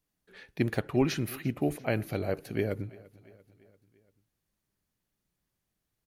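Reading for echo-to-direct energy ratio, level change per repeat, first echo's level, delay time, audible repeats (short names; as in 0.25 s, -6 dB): -20.5 dB, -5.0 dB, -22.0 dB, 0.342 s, 3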